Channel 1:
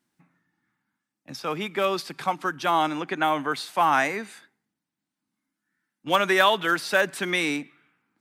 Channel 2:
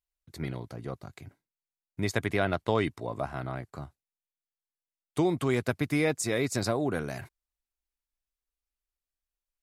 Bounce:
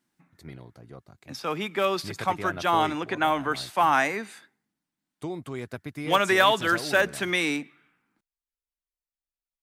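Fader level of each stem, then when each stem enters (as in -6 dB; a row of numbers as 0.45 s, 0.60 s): -0.5 dB, -8.0 dB; 0.00 s, 0.05 s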